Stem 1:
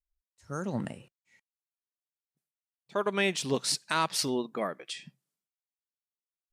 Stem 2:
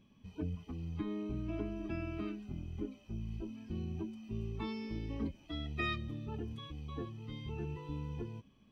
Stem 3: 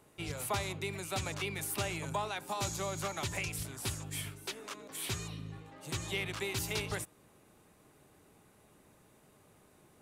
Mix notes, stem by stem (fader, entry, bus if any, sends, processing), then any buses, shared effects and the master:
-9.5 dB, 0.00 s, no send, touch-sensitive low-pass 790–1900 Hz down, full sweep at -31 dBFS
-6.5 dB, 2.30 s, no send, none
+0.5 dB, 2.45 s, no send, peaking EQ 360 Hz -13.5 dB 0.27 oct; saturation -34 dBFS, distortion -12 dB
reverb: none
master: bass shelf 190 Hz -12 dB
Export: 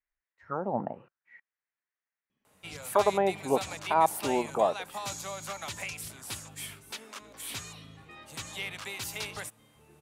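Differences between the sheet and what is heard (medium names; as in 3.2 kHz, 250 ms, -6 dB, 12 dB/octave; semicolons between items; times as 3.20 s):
stem 1 -9.5 dB -> +2.0 dB; stem 2 -6.5 dB -> -14.0 dB; stem 3: missing saturation -34 dBFS, distortion -12 dB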